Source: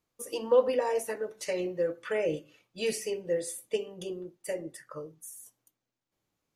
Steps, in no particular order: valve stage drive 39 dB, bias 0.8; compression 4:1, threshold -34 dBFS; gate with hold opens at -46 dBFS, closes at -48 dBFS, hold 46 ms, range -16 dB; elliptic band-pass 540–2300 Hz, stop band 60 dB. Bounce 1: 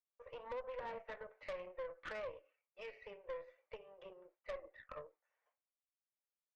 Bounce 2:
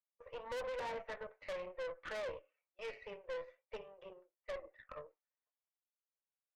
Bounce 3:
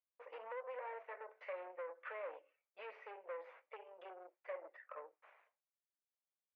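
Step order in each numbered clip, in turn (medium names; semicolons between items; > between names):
compression > gate with hold > elliptic band-pass > valve stage; elliptic band-pass > gate with hold > valve stage > compression; gate with hold > compression > valve stage > elliptic band-pass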